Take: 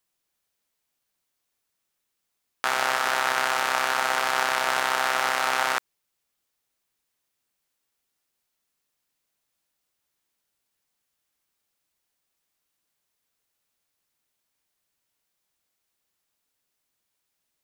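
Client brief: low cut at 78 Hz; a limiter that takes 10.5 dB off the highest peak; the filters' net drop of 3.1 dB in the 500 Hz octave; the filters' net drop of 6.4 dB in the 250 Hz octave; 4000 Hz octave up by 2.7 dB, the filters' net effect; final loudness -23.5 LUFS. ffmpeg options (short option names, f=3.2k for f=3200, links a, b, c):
-af "highpass=78,equalizer=f=250:t=o:g=-7,equalizer=f=500:t=o:g=-3,equalizer=f=4k:t=o:g=3.5,volume=7.5dB,alimiter=limit=-8dB:level=0:latency=1"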